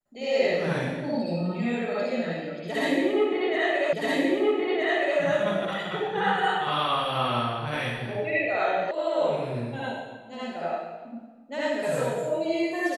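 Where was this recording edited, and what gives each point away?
3.93 s: repeat of the last 1.27 s
8.91 s: sound stops dead

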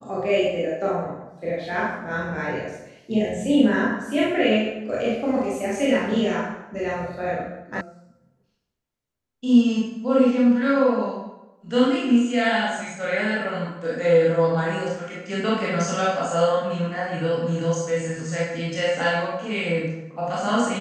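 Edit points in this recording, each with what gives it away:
7.81 s: sound stops dead

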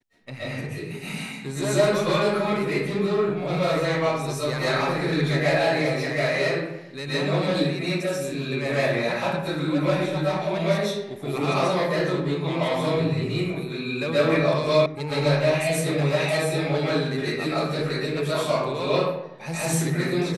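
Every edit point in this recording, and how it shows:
14.86 s: sound stops dead

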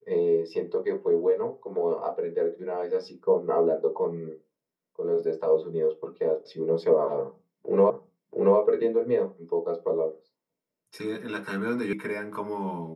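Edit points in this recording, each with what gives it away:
7.90 s: repeat of the last 0.68 s
11.93 s: sound stops dead

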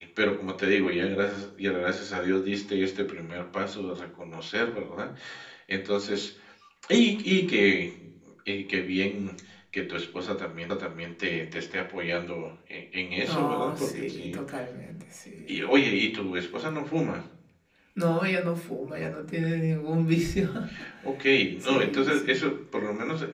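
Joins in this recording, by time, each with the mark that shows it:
10.70 s: repeat of the last 0.41 s

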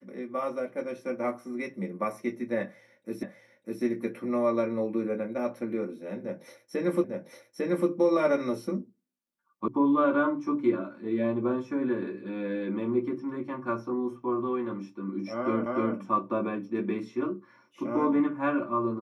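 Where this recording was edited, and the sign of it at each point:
3.23 s: repeat of the last 0.6 s
7.04 s: repeat of the last 0.85 s
9.68 s: sound stops dead
15.66 s: repeat of the last 0.3 s

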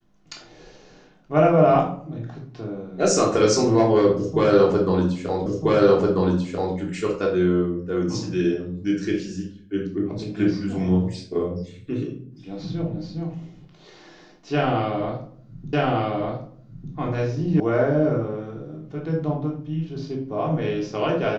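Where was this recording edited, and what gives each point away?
5.46 s: repeat of the last 1.29 s
15.73 s: repeat of the last 1.2 s
17.60 s: sound stops dead

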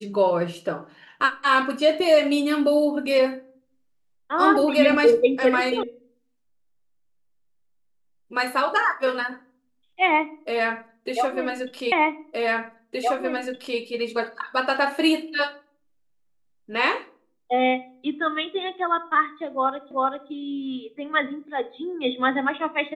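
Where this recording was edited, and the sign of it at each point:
5.83 s: sound stops dead
11.92 s: repeat of the last 1.87 s
19.91 s: repeat of the last 0.39 s

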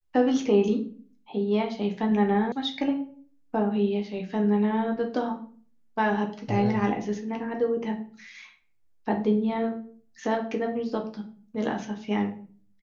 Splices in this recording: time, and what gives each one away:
2.52 s: sound stops dead

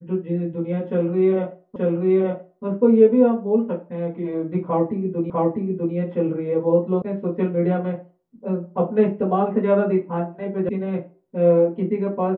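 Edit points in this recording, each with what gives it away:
1.76 s: repeat of the last 0.88 s
5.30 s: repeat of the last 0.65 s
7.02 s: sound stops dead
10.69 s: sound stops dead

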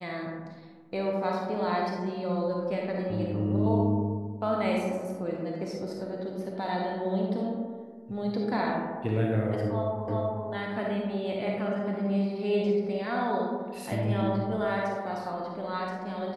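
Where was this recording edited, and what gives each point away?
10.08 s: repeat of the last 0.38 s

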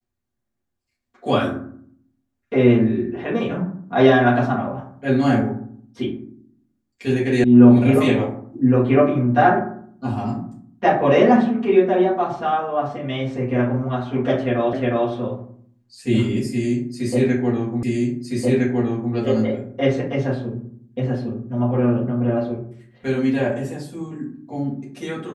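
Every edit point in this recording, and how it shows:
7.44 s: sound stops dead
14.73 s: repeat of the last 0.36 s
17.83 s: repeat of the last 1.31 s

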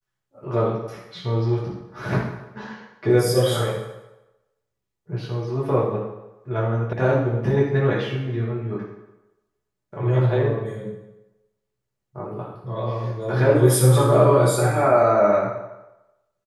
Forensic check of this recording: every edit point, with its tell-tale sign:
6.93 s: sound stops dead

